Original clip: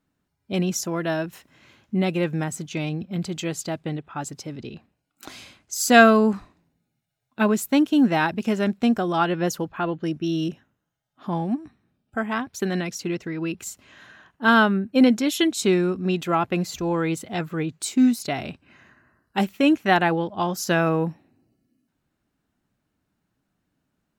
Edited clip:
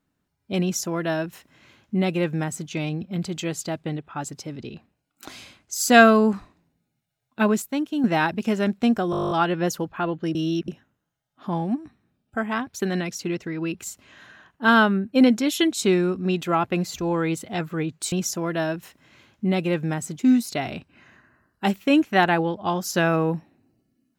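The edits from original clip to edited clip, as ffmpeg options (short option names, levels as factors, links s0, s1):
-filter_complex "[0:a]asplit=17[s0][s1][s2][s3][s4][s5][s6][s7][s8][s9][s10][s11][s12][s13][s14][s15][s16];[s0]atrim=end=7.622[s17];[s1]atrim=start=7.618:end=8.042,asetpts=PTS-STARTPTS,volume=0.447[s18];[s2]atrim=start=8.038:end=9.132[s19];[s3]atrim=start=9.108:end=9.132[s20];[s4]atrim=start=9.108:end=9.132[s21];[s5]atrim=start=9.108:end=9.132[s22];[s6]atrim=start=9.108:end=9.132[s23];[s7]atrim=start=9.108:end=9.132[s24];[s8]atrim=start=9.108:end=9.132[s25];[s9]atrim=start=9.108:end=9.132[s26];[s10]atrim=start=9.108:end=9.132[s27];[s11]atrim=start=9.108:end=9.132[s28];[s12]atrim=start=9.108:end=10.152[s29];[s13]atrim=start=10.148:end=10.482,asetpts=PTS-STARTPTS,areverse[s30];[s14]atrim=start=10.478:end=17.922[s31];[s15]atrim=start=0.618:end=2.692[s32];[s16]atrim=start=17.918[s33];[s17][s18]acrossfade=d=0.004:c1=hsin:c2=hsin[s34];[s34][s19]acrossfade=d=0.004:c1=hsin:c2=hsin[s35];[s35][s20]acrossfade=d=0.004:c1=hsin:c2=hsin[s36];[s36][s21]acrossfade=d=0.004:c1=hsin:c2=hsin[s37];[s37][s22]acrossfade=d=0.004:c1=hsin:c2=hsin[s38];[s38][s23]acrossfade=d=0.004:c1=hsin:c2=hsin[s39];[s39][s24]acrossfade=d=0.004:c1=hsin:c2=hsin[s40];[s40][s25]acrossfade=d=0.004:c1=hsin:c2=hsin[s41];[s41][s26]acrossfade=d=0.004:c1=hsin:c2=hsin[s42];[s42][s27]acrossfade=d=0.004:c1=hsin:c2=hsin[s43];[s43][s28]acrossfade=d=0.004:c1=hsin:c2=hsin[s44];[s44][s29]acrossfade=d=0.004:c1=hsin:c2=hsin[s45];[s45][s30]acrossfade=d=0.004:c1=hsin:c2=hsin[s46];[s46][s31]acrossfade=d=0.004:c1=hsin:c2=hsin[s47];[s47][s32]acrossfade=d=0.004:c1=hsin:c2=hsin[s48];[s48][s33]acrossfade=d=0.004:c1=hsin:c2=hsin"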